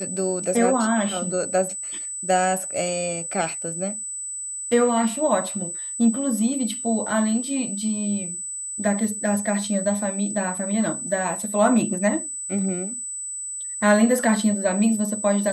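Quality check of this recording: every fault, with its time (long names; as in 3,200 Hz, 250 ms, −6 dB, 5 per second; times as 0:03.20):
whistle 8,000 Hz −29 dBFS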